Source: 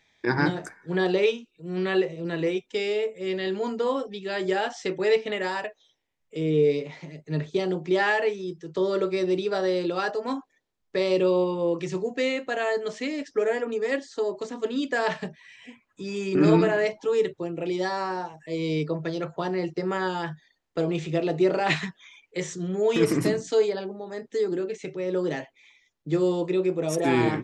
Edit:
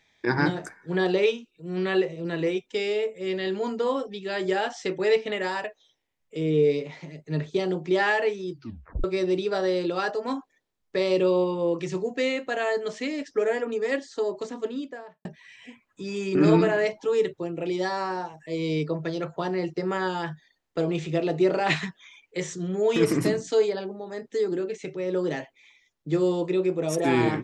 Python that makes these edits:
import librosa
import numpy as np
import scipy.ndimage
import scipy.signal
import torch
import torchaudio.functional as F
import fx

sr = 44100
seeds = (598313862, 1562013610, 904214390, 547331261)

y = fx.studio_fade_out(x, sr, start_s=14.41, length_s=0.84)
y = fx.edit(y, sr, fx.tape_stop(start_s=8.51, length_s=0.53), tone=tone)